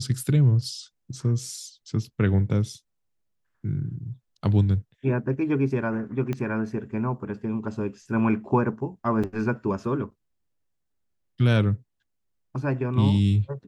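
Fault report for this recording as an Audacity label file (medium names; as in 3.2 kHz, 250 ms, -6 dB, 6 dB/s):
6.330000	6.330000	pop -17 dBFS
9.230000	9.240000	dropout 6.1 ms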